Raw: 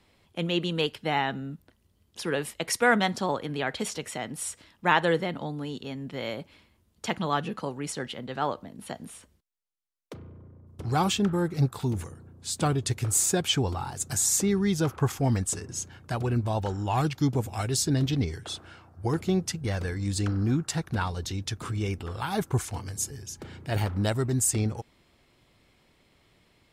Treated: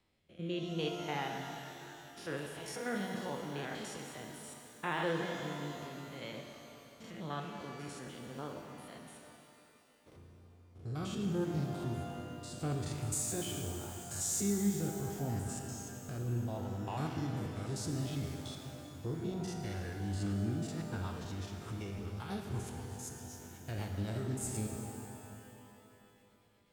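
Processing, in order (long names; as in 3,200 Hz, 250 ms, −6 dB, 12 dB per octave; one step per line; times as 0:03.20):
spectrum averaged block by block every 100 ms
rotating-speaker cabinet horn 0.75 Hz, later 8 Hz, at 0:19.89
reverb with rising layers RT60 2.9 s, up +12 semitones, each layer −8 dB, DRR 3 dB
level −9 dB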